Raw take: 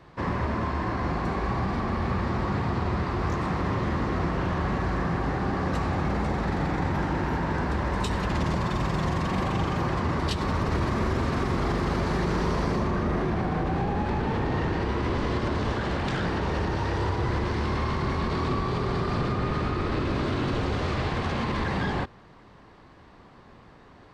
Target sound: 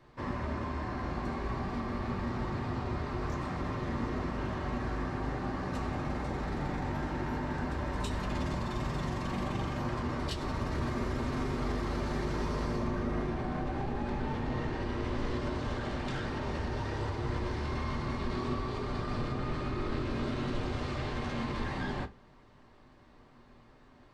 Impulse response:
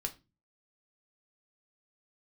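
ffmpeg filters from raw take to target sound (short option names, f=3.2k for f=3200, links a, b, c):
-filter_complex "[0:a]highshelf=f=6.1k:g=4.5[a];[1:a]atrim=start_sample=2205,asetrate=66150,aresample=44100[b];[a][b]afir=irnorm=-1:irlink=0,volume=-5dB"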